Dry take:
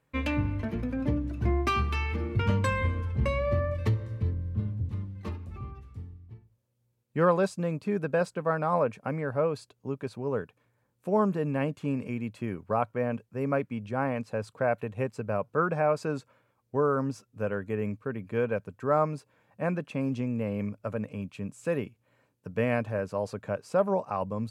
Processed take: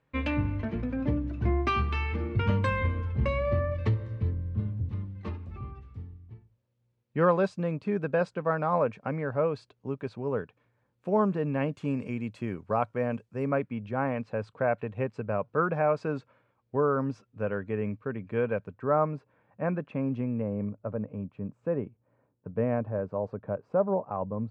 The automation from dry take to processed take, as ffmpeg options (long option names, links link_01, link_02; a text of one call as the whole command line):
ffmpeg -i in.wav -af "asetnsamples=nb_out_samples=441:pad=0,asendcmd='11.72 lowpass f 7300;13.46 lowpass f 3200;18.74 lowpass f 1900;20.42 lowpass f 1000',lowpass=3900" out.wav